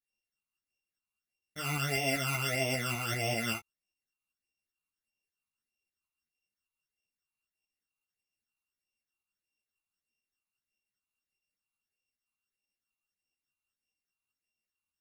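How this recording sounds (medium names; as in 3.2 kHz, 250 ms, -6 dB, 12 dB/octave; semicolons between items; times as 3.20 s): a buzz of ramps at a fixed pitch in blocks of 16 samples; phasing stages 12, 1.6 Hz, lowest notch 550–1400 Hz; tremolo saw up 5.1 Hz, depth 40%; a shimmering, thickened sound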